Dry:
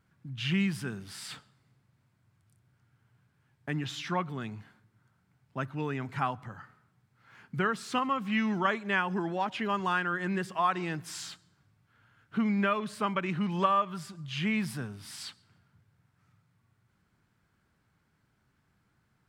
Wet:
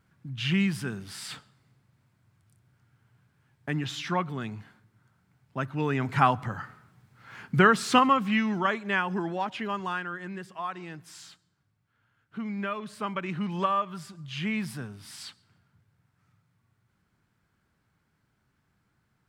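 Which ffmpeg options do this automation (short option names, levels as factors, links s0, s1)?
-af "volume=6.68,afade=t=in:st=5.67:d=0.66:silence=0.446684,afade=t=out:st=7.95:d=0.49:silence=0.375837,afade=t=out:st=9.23:d=1.1:silence=0.375837,afade=t=in:st=12.36:d=1.04:silence=0.473151"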